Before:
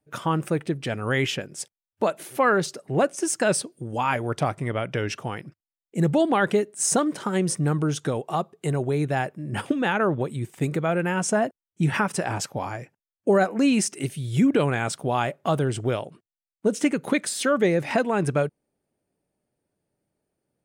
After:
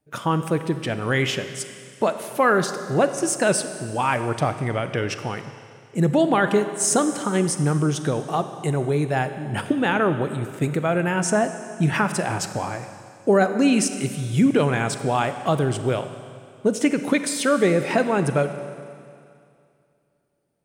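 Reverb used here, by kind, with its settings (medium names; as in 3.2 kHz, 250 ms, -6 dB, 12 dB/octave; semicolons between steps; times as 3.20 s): Schroeder reverb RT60 2.4 s, combs from 31 ms, DRR 9.5 dB; trim +2 dB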